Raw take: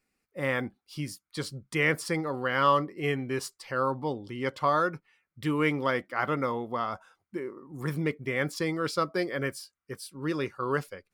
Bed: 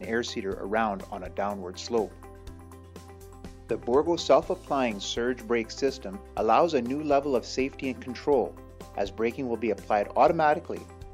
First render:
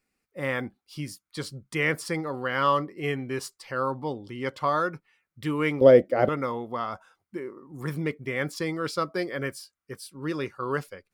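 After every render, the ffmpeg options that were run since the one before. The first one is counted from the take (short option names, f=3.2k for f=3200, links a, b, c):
-filter_complex "[0:a]asettb=1/sr,asplit=3[a][b][c];[a]atrim=end=5.814[d];[b]atrim=start=5.81:end=6.29,asetpts=PTS-STARTPTS,afade=t=in:d=0.004:c=qsin,afade=t=out:st=0.476:d=0.004:c=qsin,lowshelf=f=780:t=q:w=3:g=10.5[e];[c]atrim=start=6.286[f];[d][e]acrossfade=d=0.004:c1=hsin:c2=qsin[g];[g][f]acrossfade=d=0.004:c1=qsin:c2=hsin"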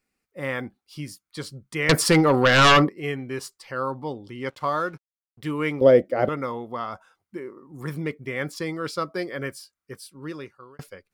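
-filter_complex "[0:a]asettb=1/sr,asplit=3[a][b][c];[a]atrim=end=1.894[d];[b]atrim=start=1.89:end=2.89,asetpts=PTS-STARTPTS,afade=t=in:d=0.004:c=qsin,afade=t=out:st=0.996:d=0.004:c=qsin,aeval=exprs='0.282*sin(PI/2*3.55*val(0)/0.282)':c=same[e];[c]atrim=start=2.886[f];[d][e]acrossfade=d=0.004:c1=hsin:c2=qsin[g];[g][f]acrossfade=d=0.004:c1=qsin:c2=hsin,asettb=1/sr,asplit=3[h][i][j];[h]atrim=end=4.504[k];[i]atrim=start=4.5:end=5.51,asetpts=PTS-STARTPTS,afade=t=in:d=0.004:c=qsin,afade=t=out:st=1.006:d=0.004:c=qsin,aeval=exprs='sgn(val(0))*max(abs(val(0))-0.00211,0)':c=same[l];[j]atrim=start=5.506[m];[k][l]acrossfade=d=0.004:c1=hsin:c2=qsin[n];[n][m]acrossfade=d=0.004:c1=qsin:c2=hsin,asplit=2[o][p];[o]atrim=end=10.79,asetpts=PTS-STARTPTS,afade=t=out:st=9.99:d=0.8[q];[p]atrim=start=10.79,asetpts=PTS-STARTPTS,afade=t=in:d=0.004:c=hsin[r];[q][r]concat=n=2:v=0:a=1"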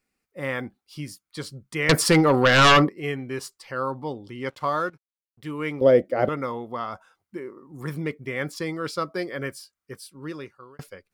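-filter_complex "[0:a]asplit=2[a][b];[a]atrim=end=4.9,asetpts=PTS-STARTPTS,afade=t=out:st=4.896:d=0.004:c=hsin:silence=0.223872[c];[b]atrim=start=4.9,asetpts=PTS-STARTPTS,afade=t=in:d=1.28:silence=0.223872[d];[c][d]concat=n=2:v=0:a=1"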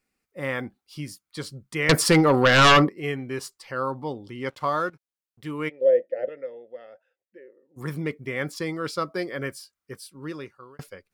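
-filter_complex "[0:a]asplit=3[a][b][c];[a]afade=t=out:st=5.68:d=0.02[d];[b]asplit=3[e][f][g];[e]bandpass=f=530:t=q:w=8,volume=0dB[h];[f]bandpass=f=1.84k:t=q:w=8,volume=-6dB[i];[g]bandpass=f=2.48k:t=q:w=8,volume=-9dB[j];[h][i][j]amix=inputs=3:normalize=0,afade=t=in:st=5.68:d=0.02,afade=t=out:st=7.76:d=0.02[k];[c]afade=t=in:st=7.76:d=0.02[l];[d][k][l]amix=inputs=3:normalize=0"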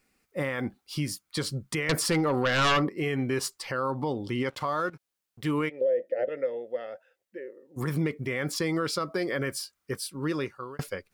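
-filter_complex "[0:a]asplit=2[a][b];[b]acompressor=threshold=-26dB:ratio=6,volume=3dB[c];[a][c]amix=inputs=2:normalize=0,alimiter=limit=-19.5dB:level=0:latency=1:release=111"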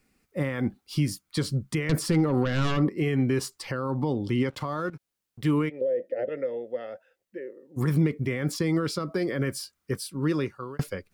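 -filter_complex "[0:a]acrossover=split=330[a][b];[a]acontrast=62[c];[b]alimiter=level_in=0.5dB:limit=-24dB:level=0:latency=1:release=79,volume=-0.5dB[d];[c][d]amix=inputs=2:normalize=0"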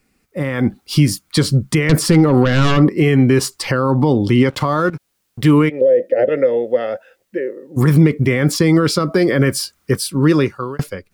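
-filter_complex "[0:a]asplit=2[a][b];[b]alimiter=limit=-23.5dB:level=0:latency=1:release=323,volume=-1dB[c];[a][c]amix=inputs=2:normalize=0,dynaudnorm=f=100:g=11:m=11.5dB"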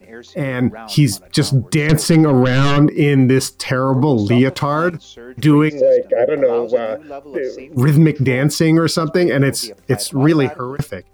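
-filter_complex "[1:a]volume=-8dB[a];[0:a][a]amix=inputs=2:normalize=0"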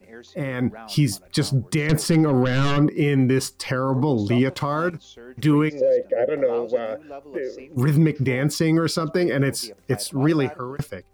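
-af "volume=-6.5dB"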